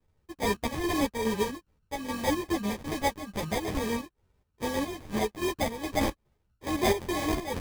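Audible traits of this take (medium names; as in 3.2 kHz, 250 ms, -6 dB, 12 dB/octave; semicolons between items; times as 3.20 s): a buzz of ramps at a fixed pitch in blocks of 16 samples; chopped level 2.4 Hz, depth 60%, duty 60%; aliases and images of a low sample rate 1.4 kHz, jitter 0%; a shimmering, thickened sound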